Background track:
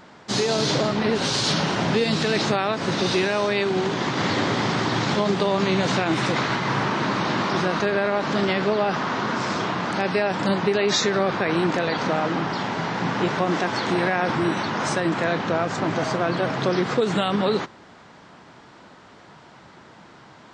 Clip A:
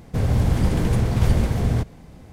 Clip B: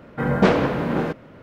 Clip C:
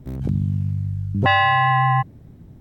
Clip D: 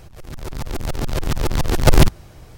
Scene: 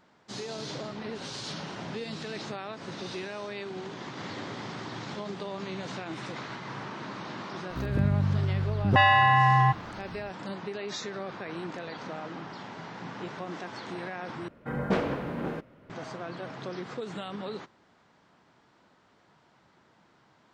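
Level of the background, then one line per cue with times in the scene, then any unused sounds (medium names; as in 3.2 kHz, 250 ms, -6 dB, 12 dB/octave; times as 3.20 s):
background track -15.5 dB
7.70 s: add C -3.5 dB
14.48 s: replace with B -10.5 dB
not used: A, D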